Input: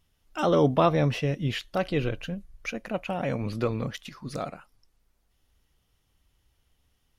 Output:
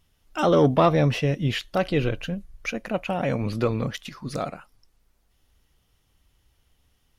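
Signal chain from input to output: soft clip -10.5 dBFS, distortion -24 dB; gain +4 dB

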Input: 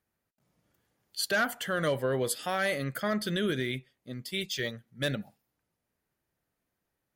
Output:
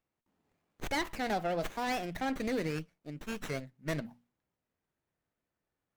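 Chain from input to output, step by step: speed glide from 147% -> 93%; notches 60/120/180/240 Hz; running maximum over 9 samples; gain -3.5 dB

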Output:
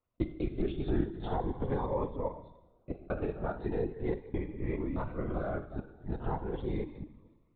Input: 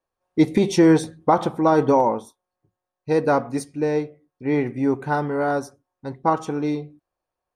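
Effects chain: local time reversal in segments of 0.207 s; low shelf 150 Hz +8 dB; compressor 5:1, threshold -26 dBFS, peak gain reduction 15 dB; two-slope reverb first 0.85 s, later 2.6 s, from -20 dB, DRR 6.5 dB; LPC vocoder at 8 kHz whisper; cascading phaser rising 0.4 Hz; gain -4.5 dB

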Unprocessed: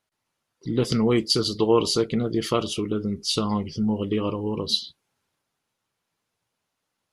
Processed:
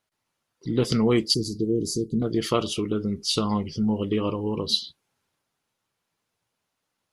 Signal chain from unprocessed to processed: 1.34–2.22 inverse Chebyshev band-stop 980–2200 Hz, stop band 70 dB

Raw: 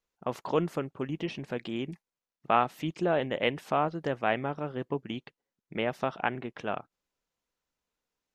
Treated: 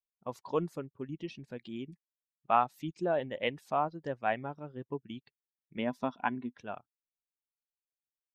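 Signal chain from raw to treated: per-bin expansion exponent 1.5; dynamic EQ 870 Hz, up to +5 dB, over -40 dBFS, Q 1; 5.78–6.56 small resonant body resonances 250/1000/3400 Hz, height 12 dB, ringing for 65 ms; gain -4 dB

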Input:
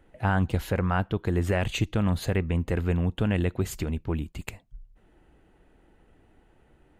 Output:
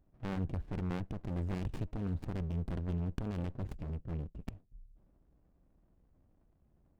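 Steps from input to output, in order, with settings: Wiener smoothing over 41 samples; transient shaper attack -3 dB, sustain +5 dB; running maximum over 65 samples; gain -7.5 dB

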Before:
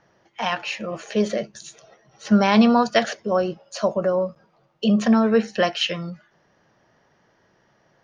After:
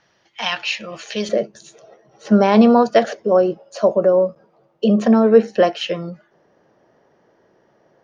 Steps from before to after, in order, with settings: bell 3800 Hz +12.5 dB 2.2 oct, from 1.29 s 430 Hz; gain -4 dB

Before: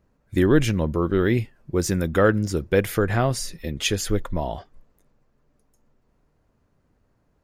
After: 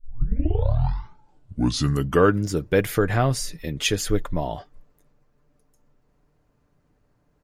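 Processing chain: tape start at the beginning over 2.45 s; comb 6.8 ms, depth 34%

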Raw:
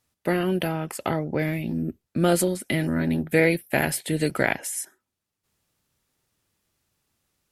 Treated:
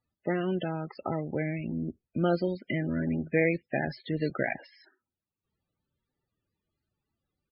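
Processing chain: downsampling 11025 Hz; loudest bins only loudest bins 32; gain -5.5 dB

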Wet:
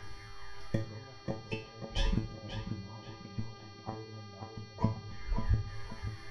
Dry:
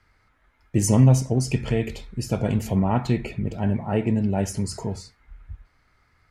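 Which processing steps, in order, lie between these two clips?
phaser 0.4 Hz, delay 2.9 ms, feedback 62%; ripple EQ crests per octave 1.2, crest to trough 12 dB; treble ducked by the level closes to 850 Hz, closed at -18 dBFS; flipped gate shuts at -21 dBFS, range -38 dB; buzz 400 Hz, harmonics 15, -60 dBFS -4 dB/oct; resonator 110 Hz, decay 0.35 s, harmonics all, mix 90%; tape echo 0.537 s, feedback 41%, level -5 dB, low-pass 2700 Hz; on a send at -14 dB: reverb RT60 0.40 s, pre-delay 4 ms; on the sum: gain +17 dB

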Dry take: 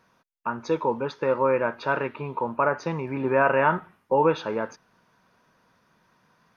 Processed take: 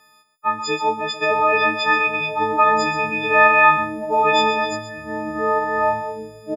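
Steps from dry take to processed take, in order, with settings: frequency quantiser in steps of 6 st; low shelf 490 Hz -8 dB; on a send: echo 0.131 s -11 dB; on the sum: echoes that change speed 0.675 s, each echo -6 st, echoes 2, each echo -6 dB; dynamic EQ 2700 Hz, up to +7 dB, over -41 dBFS, Q 1.9; gain +4.5 dB

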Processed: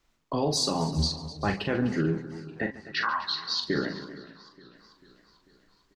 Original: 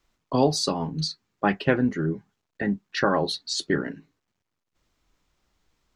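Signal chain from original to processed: 0.96–1.5 octaver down 1 oct, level 0 dB; 2.66–3.63 elliptic band-pass 1000–5000 Hz, stop band 40 dB; limiter -16.5 dBFS, peak gain reduction 10.5 dB; tapped delay 42/142/253/390 ms -7/-17/-15/-18.5 dB; warbling echo 0.442 s, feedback 57%, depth 90 cents, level -20.5 dB

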